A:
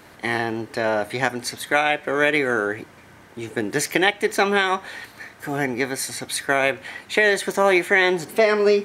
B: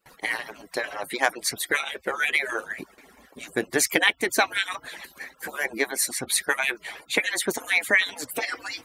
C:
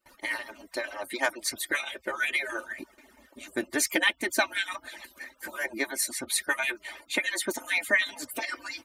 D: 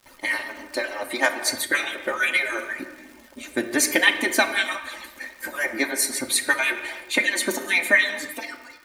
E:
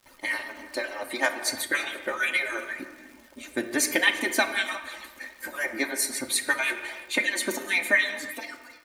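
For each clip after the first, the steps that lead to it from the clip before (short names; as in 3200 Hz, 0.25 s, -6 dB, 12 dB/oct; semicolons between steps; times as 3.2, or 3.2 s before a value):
median-filter separation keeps percussive; gate with hold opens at -43 dBFS; high shelf 8300 Hz +7.5 dB
comb 3.3 ms, depth 74%; gain -6 dB
ending faded out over 0.92 s; crackle 270/s -45 dBFS; reverb, pre-delay 4 ms, DRR 6 dB; gain +5.5 dB
echo 0.339 s -21 dB; gain -4 dB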